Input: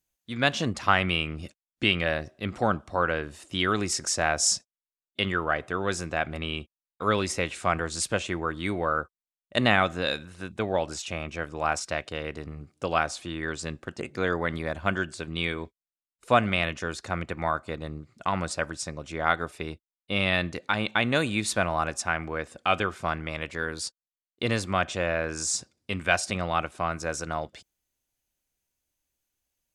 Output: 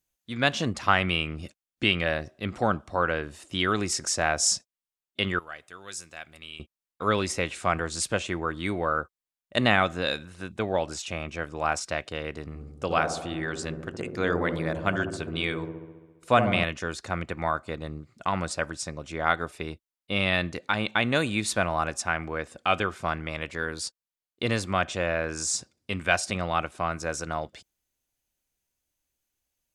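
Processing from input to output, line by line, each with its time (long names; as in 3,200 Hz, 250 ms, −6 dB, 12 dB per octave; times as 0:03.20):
0:05.39–0:06.60: first-order pre-emphasis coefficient 0.9
0:12.48–0:16.64: delay with a low-pass on its return 68 ms, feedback 69%, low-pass 690 Hz, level −4.5 dB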